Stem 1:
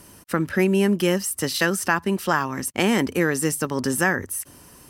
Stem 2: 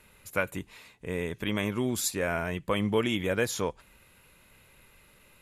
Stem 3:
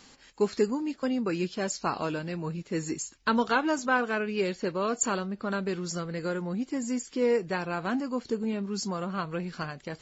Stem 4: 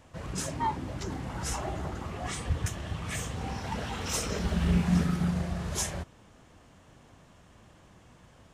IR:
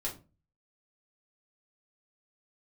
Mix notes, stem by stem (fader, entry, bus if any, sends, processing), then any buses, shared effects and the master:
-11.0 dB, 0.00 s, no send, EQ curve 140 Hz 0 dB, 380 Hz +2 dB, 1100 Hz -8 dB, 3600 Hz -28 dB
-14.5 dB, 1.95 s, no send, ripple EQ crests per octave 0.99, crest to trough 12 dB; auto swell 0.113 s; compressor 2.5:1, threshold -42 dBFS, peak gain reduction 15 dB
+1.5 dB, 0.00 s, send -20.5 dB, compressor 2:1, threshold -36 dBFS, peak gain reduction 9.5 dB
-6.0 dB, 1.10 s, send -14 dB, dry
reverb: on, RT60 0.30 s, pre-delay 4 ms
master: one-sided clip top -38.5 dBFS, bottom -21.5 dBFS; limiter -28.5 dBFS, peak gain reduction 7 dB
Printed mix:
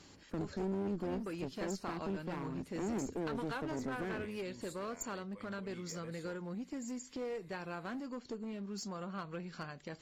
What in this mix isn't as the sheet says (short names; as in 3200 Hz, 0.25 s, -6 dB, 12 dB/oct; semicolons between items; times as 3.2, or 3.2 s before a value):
stem 2: entry 1.95 s -> 2.65 s; stem 3 +1.5 dB -> -6.5 dB; stem 4: muted